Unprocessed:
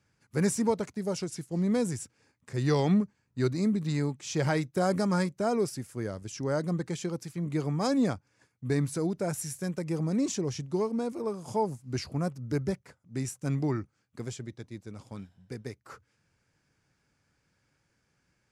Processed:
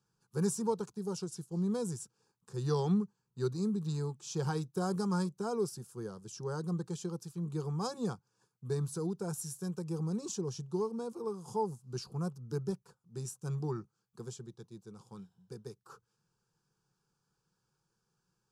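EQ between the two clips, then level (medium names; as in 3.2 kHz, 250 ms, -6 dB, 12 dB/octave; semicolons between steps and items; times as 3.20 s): static phaser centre 410 Hz, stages 8; -4.0 dB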